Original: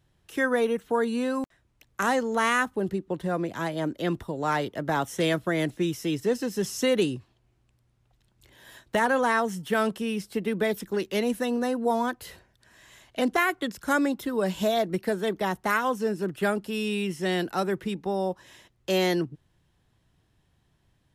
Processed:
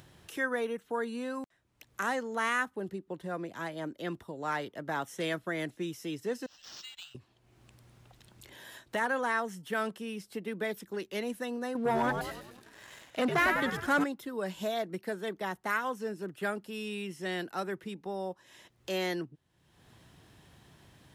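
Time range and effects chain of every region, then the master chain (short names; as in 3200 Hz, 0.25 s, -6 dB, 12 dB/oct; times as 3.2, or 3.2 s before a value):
6.46–7.15 inverse Chebyshev band-stop 210–870 Hz, stop band 70 dB + air absorption 56 m + decimation joined by straight lines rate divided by 4×
11.75–14.04 frequency-shifting echo 99 ms, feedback 54%, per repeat -96 Hz, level -7 dB + sample leveller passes 2 + high shelf 3700 Hz -5.5 dB
whole clip: HPF 150 Hz 6 dB/oct; dynamic EQ 1700 Hz, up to +4 dB, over -38 dBFS, Q 1.3; upward compressor, threshold -31 dBFS; gain -8.5 dB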